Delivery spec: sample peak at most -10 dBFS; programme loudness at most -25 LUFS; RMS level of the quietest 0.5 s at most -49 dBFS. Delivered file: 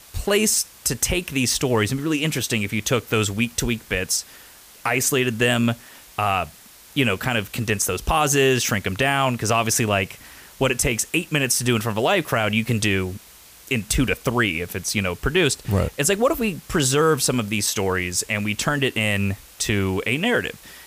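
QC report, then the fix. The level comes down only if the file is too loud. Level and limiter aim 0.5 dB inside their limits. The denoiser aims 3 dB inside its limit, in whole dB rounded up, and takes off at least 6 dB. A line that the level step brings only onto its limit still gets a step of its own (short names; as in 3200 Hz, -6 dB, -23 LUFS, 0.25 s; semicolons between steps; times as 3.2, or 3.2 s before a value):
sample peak -7.5 dBFS: fail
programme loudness -21.5 LUFS: fail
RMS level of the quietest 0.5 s -47 dBFS: fail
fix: gain -4 dB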